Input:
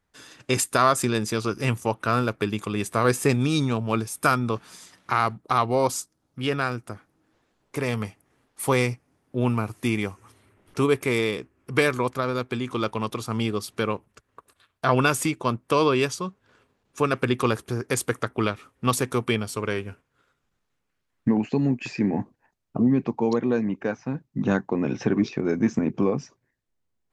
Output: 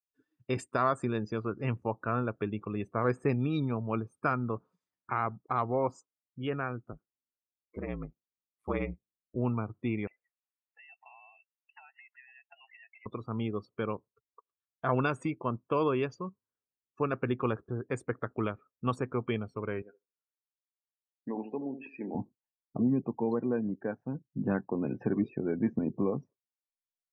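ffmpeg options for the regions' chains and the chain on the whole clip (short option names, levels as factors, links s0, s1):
-filter_complex "[0:a]asettb=1/sr,asplit=3[s0][s1][s2];[s0]atrim=end=6.924[s3];[s1]atrim=start=6.92:end=9.36,asetpts=PTS-STARTPTS,afade=t=in:d=0.004:c=qsin,afade=t=out:st=2.436:d=0.004:c=qsin,bandreject=f=950:w=11,aeval=exprs='val(0)*sin(2*PI*55*n/s)':c=same[s4];[s2]atrim=start=9.356[s5];[s3][s4]acrossfade=d=0.004:c1=hsin:c2=qsin[s6];[s6][s5]acrossfade=d=0.004:c1=qsin:c2=hsin,asettb=1/sr,asplit=3[s7][s8][s9];[s7]atrim=end=10.074[s10];[s8]atrim=start=10.07:end=13.06,asetpts=PTS-STARTPTS,afade=t=in:d=0.004:c=qsin,afade=t=out:st=2.986:d=0.004:c=qsin,highpass=520,acompressor=threshold=0.0158:ratio=16:attack=3.2:release=140:knee=1:detection=peak,lowpass=f=2600:t=q:w=0.5098,lowpass=f=2600:t=q:w=0.6013,lowpass=f=2600:t=q:w=0.9,lowpass=f=2600:t=q:w=2.563,afreqshift=-3100[s11];[s9]atrim=start=13.056[s12];[s10][s11]acrossfade=d=0.004:c1=hsin:c2=qsin[s13];[s13][s12]acrossfade=d=0.004:c1=qsin:c2=hsin,asettb=1/sr,asplit=3[s14][s15][s16];[s14]atrim=end=19.824[s17];[s15]atrim=start=19.82:end=22.15,asetpts=PTS-STARTPTS,afade=t=in:d=0.004:c=qsin,afade=t=out:st=2.326:d=0.004:c=qsin,highpass=400,lowpass=5500,asplit=2[s18][s19];[s19]adelay=74,lowpass=f=1300:p=1,volume=0.355,asplit=2[s20][s21];[s21]adelay=74,lowpass=f=1300:p=1,volume=0.41,asplit=2[s22][s23];[s23]adelay=74,lowpass=f=1300:p=1,volume=0.41,asplit=2[s24][s25];[s25]adelay=74,lowpass=f=1300:p=1,volume=0.41,asplit=2[s26][s27];[s27]adelay=74,lowpass=f=1300:p=1,volume=0.41[s28];[s18][s20][s22][s24][s26][s28]amix=inputs=6:normalize=0,atrim=end_sample=102753[s29];[s16]atrim=start=22.146[s30];[s17][s29]acrossfade=d=0.004:c1=hsin:c2=qsin[s31];[s31][s30]acrossfade=d=0.004:c1=qsin:c2=hsin,lowpass=f=1600:p=1,afftdn=nr=32:nf=-39,volume=0.447"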